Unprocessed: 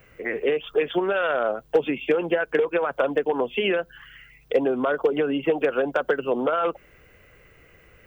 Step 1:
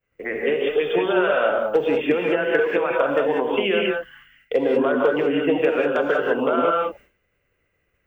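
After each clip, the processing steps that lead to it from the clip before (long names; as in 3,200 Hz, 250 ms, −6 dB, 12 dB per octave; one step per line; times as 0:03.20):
downward expander −40 dBFS
reverb whose tail is shaped and stops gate 220 ms rising, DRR −1 dB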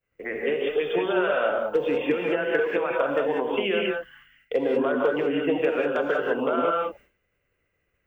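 healed spectral selection 0:01.72–0:02.17, 510–1,200 Hz after
level −4 dB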